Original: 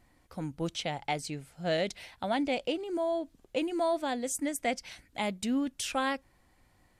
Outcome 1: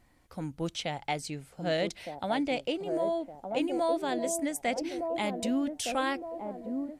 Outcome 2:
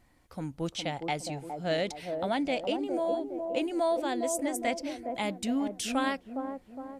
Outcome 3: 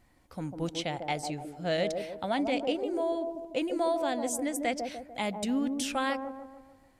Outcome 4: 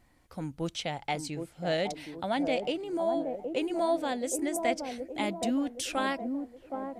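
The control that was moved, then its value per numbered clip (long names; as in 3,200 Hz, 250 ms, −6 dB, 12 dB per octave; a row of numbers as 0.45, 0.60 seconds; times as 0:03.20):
delay with a band-pass on its return, delay time: 1,213, 412, 148, 769 milliseconds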